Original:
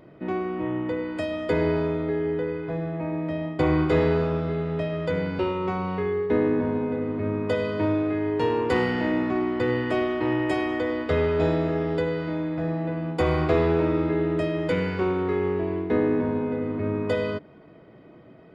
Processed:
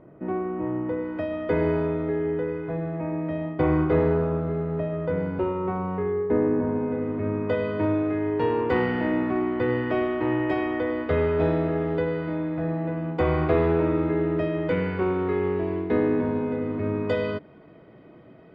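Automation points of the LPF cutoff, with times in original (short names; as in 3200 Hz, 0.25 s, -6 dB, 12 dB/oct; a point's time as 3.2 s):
0.81 s 1400 Hz
1.63 s 2300 Hz
3.4 s 2300 Hz
4.16 s 1400 Hz
6.6 s 1400 Hz
7.07 s 2500 Hz
15.05 s 2500 Hz
15.68 s 4600 Hz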